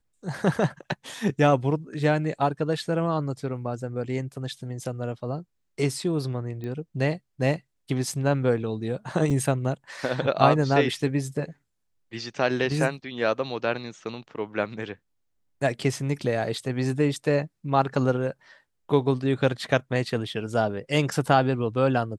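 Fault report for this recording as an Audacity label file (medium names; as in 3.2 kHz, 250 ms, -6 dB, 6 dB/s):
6.640000	6.640000	pop -24 dBFS
9.300000	9.300000	dropout 3.4 ms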